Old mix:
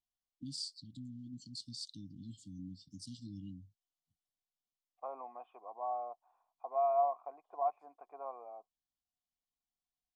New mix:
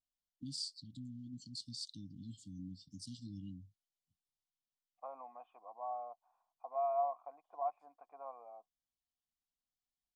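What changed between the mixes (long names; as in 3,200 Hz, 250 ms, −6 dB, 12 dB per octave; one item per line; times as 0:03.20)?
second voice −3.5 dB
master: add parametric band 390 Hz −14.5 dB 0.26 octaves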